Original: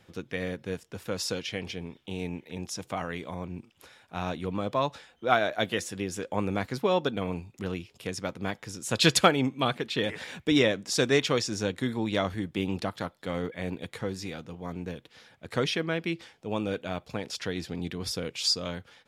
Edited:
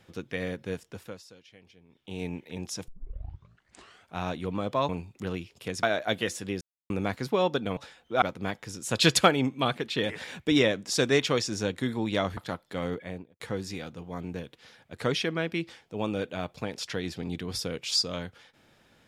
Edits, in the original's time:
0.87–2.23 s: dip -20.5 dB, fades 0.35 s
2.88 s: tape start 1.27 s
4.89–5.34 s: swap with 7.28–8.22 s
6.12–6.41 s: mute
12.37–12.89 s: delete
13.45–13.92 s: studio fade out

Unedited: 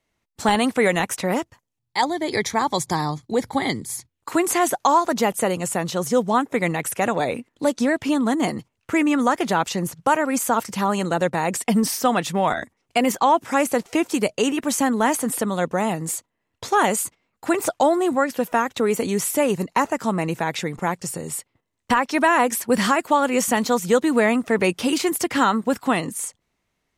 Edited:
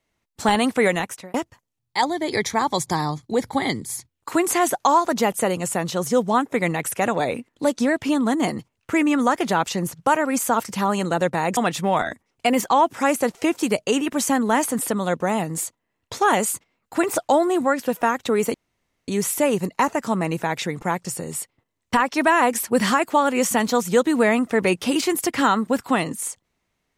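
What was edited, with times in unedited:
0.87–1.34 s: fade out
11.57–12.08 s: delete
19.05 s: insert room tone 0.54 s

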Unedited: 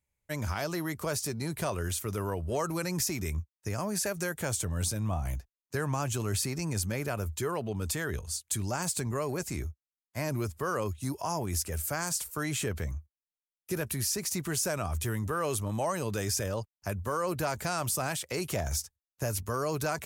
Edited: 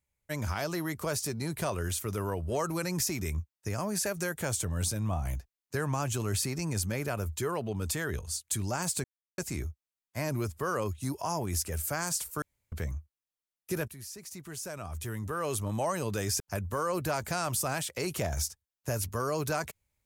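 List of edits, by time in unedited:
9.04–9.38 s: mute
12.42–12.72 s: room tone
13.88–15.67 s: fade in quadratic, from -13.5 dB
16.40–16.74 s: delete

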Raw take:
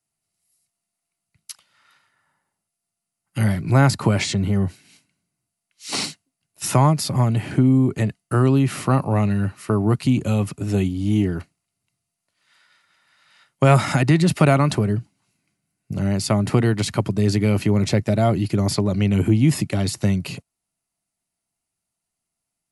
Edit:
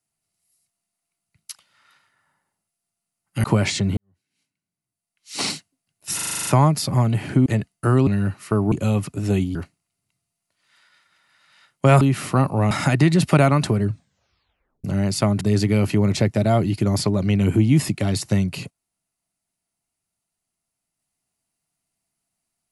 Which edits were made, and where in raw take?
3.44–3.98 s: delete
4.51–5.95 s: fade in quadratic
6.69 s: stutter 0.04 s, 9 plays
7.68–7.94 s: delete
8.55–9.25 s: move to 13.79 s
9.90–10.16 s: delete
10.99–11.33 s: delete
14.91 s: tape stop 1.01 s
16.49–17.13 s: delete

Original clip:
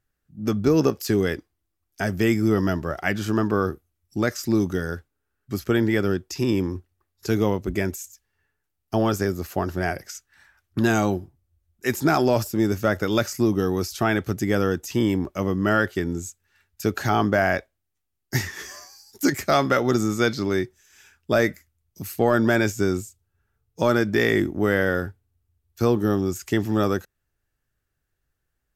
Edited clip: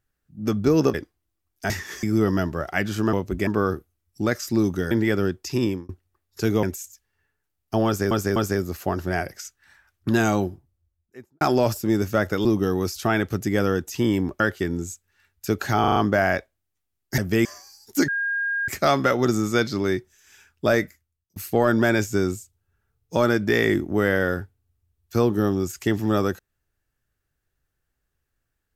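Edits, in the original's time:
0.94–1.30 s: delete
2.06–2.33 s: swap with 18.38–18.71 s
4.87–5.77 s: delete
6.49–6.75 s: fade out
7.49–7.83 s: move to 3.43 s
9.06–9.31 s: loop, 3 plays
11.17–12.11 s: studio fade out
13.15–13.41 s: delete
15.36–15.76 s: delete
17.16 s: stutter 0.04 s, 5 plays
19.34 s: add tone 1.62 kHz -22 dBFS 0.60 s
21.40–22.02 s: fade out

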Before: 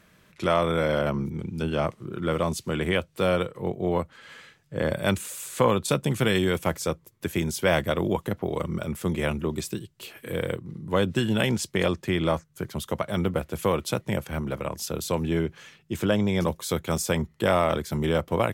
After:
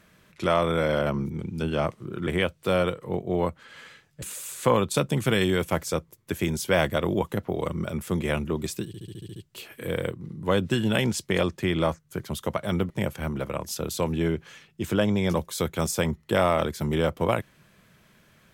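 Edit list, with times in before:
2.27–2.80 s: delete
4.75–5.16 s: delete
9.81 s: stutter 0.07 s, 8 plays
13.35–14.01 s: delete

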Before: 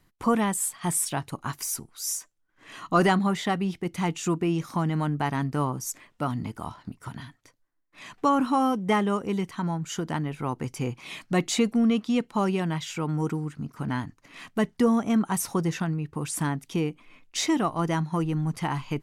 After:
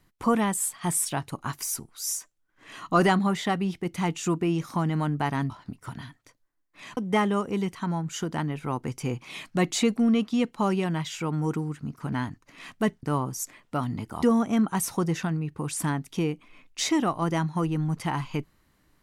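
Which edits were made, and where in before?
5.50–6.69 s: move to 14.79 s
8.16–8.73 s: delete

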